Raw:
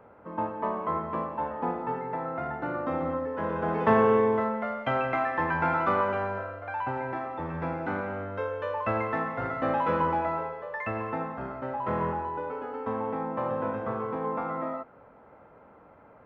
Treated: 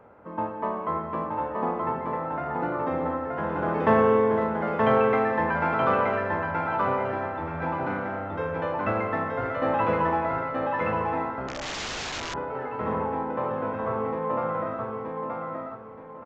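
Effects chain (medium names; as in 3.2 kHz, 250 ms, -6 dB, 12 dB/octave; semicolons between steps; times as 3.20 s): feedback delay 925 ms, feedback 29%, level -3 dB; 11.48–12.34 s: integer overflow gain 28.5 dB; resampled via 16 kHz; trim +1 dB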